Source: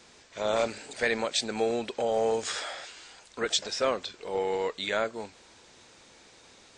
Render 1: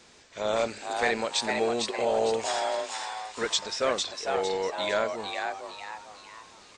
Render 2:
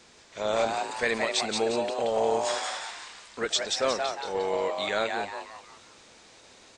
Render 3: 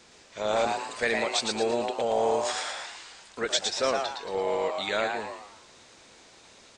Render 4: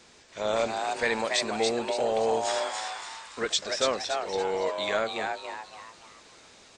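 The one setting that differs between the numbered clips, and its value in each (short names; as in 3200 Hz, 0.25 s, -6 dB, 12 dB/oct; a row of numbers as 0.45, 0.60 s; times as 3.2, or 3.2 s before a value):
frequency-shifting echo, time: 0.454, 0.177, 0.113, 0.284 s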